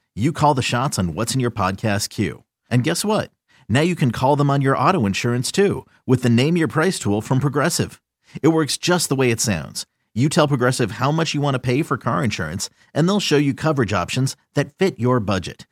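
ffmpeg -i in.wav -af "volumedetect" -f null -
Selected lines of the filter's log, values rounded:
mean_volume: -19.6 dB
max_volume: -2.4 dB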